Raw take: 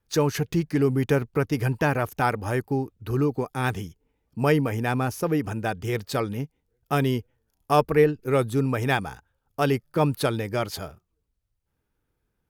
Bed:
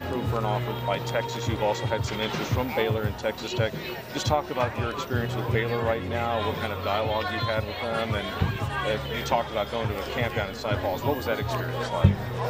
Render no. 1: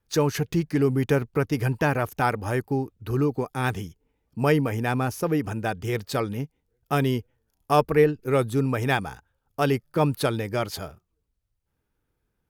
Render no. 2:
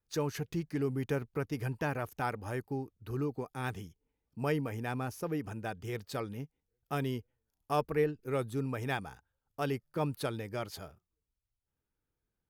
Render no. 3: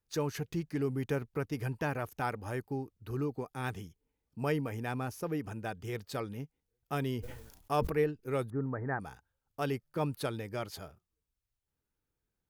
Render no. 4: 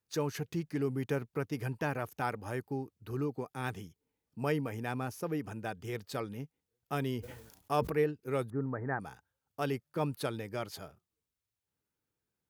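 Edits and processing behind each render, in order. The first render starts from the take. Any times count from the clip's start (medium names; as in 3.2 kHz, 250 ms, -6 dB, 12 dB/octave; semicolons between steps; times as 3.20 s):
no audible change
trim -11 dB
7.01–7.92 s: decay stretcher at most 58 dB/s; 8.50–9.00 s: steep low-pass 1.9 kHz 72 dB/octave
high-pass 94 Hz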